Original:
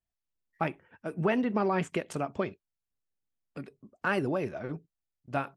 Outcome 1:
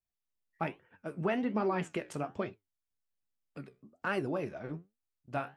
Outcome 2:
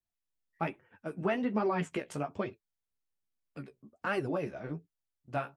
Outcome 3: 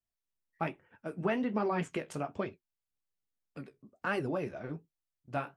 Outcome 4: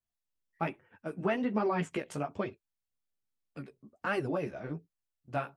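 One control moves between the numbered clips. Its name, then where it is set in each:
flanger, regen: +71, +19, −48, −2%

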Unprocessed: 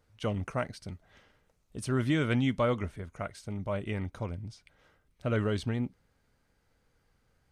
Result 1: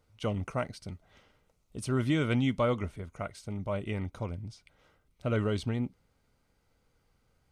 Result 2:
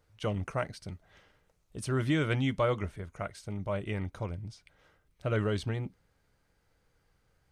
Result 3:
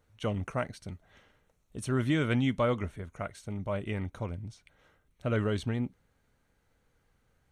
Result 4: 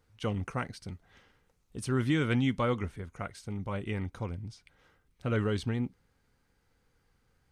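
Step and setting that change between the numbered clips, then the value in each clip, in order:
notch filter, centre frequency: 1,700, 240, 4,900, 620 Hertz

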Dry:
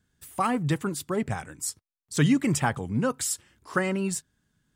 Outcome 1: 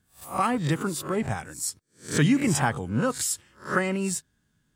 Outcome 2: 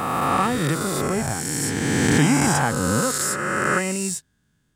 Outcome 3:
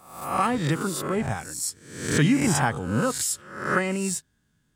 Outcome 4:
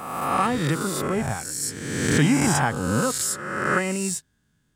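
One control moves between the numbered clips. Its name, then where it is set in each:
peak hold with a rise ahead of every peak, rising 60 dB in: 0.32, 3.03, 0.69, 1.43 seconds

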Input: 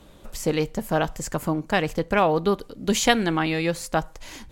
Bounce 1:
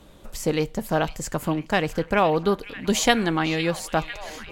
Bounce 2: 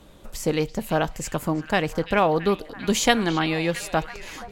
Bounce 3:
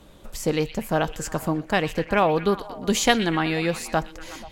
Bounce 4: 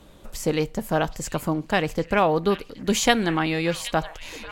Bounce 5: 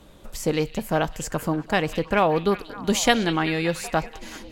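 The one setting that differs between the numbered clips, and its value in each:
echo through a band-pass that steps, delay time: 502, 335, 121, 772, 191 milliseconds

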